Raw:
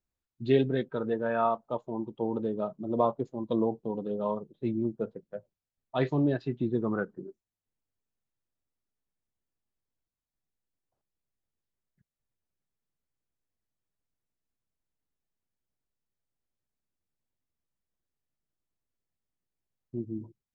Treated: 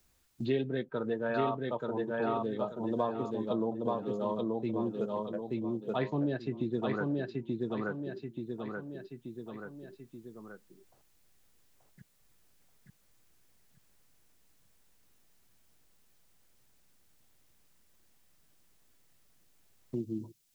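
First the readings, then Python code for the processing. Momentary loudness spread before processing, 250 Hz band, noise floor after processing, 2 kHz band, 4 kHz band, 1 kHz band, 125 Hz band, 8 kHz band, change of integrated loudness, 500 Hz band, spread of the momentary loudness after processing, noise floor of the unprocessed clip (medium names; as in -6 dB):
13 LU, -2.0 dB, -67 dBFS, +0.5 dB, -0.5 dB, -2.5 dB, -3.0 dB, no reading, -4.0 dB, -2.5 dB, 13 LU, under -85 dBFS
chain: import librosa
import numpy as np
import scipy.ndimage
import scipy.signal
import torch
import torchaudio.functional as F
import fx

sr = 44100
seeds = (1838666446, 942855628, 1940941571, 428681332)

y = fx.high_shelf(x, sr, hz=2300.0, db=9.0)
y = fx.echo_feedback(y, sr, ms=881, feedback_pct=30, wet_db=-3)
y = fx.band_squash(y, sr, depth_pct=70)
y = F.gain(torch.from_numpy(y), -4.5).numpy()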